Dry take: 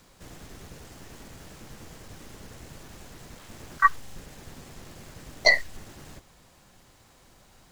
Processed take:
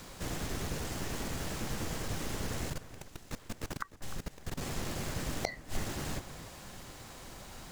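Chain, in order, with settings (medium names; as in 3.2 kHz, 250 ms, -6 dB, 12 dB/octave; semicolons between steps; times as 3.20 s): inverted gate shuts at -22 dBFS, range -34 dB; 2.70–4.61 s: level held to a coarse grid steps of 22 dB; echo whose repeats swap between lows and highs 302 ms, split 2.2 kHz, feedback 58%, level -14 dB; trim +8.5 dB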